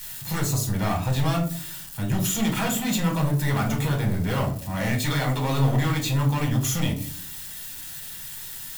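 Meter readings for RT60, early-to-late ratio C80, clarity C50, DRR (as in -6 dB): 0.50 s, 14.5 dB, 9.5 dB, 0.0 dB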